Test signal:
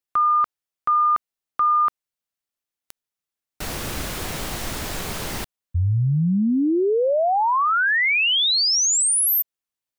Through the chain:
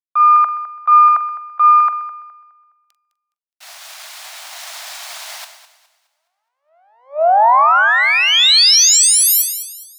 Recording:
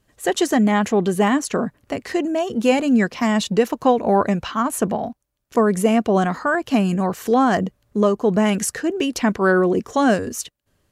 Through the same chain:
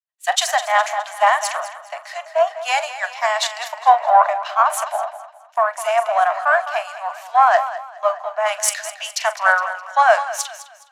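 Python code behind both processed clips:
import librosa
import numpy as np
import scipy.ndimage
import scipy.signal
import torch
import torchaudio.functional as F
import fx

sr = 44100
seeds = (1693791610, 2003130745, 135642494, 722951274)

p1 = np.where(x < 0.0, 10.0 ** (-3.0 / 20.0) * x, x)
p2 = scipy.signal.sosfilt(scipy.signal.butter(16, 620.0, 'highpass', fs=sr, output='sos'), p1)
p3 = fx.high_shelf(p2, sr, hz=6300.0, db=-11.0)
p4 = fx.rider(p3, sr, range_db=3, speed_s=2.0)
p5 = p3 + (p4 * librosa.db_to_amplitude(3.0))
p6 = fx.dynamic_eq(p5, sr, hz=2900.0, q=2.6, threshold_db=-36.0, ratio=4.0, max_db=-3)
p7 = fx.doubler(p6, sr, ms=43.0, db=-14)
p8 = p7 + fx.echo_feedback(p7, sr, ms=208, feedback_pct=59, wet_db=-8.5, dry=0)
p9 = fx.band_widen(p8, sr, depth_pct=100)
y = p9 * librosa.db_to_amplitude(-1.0)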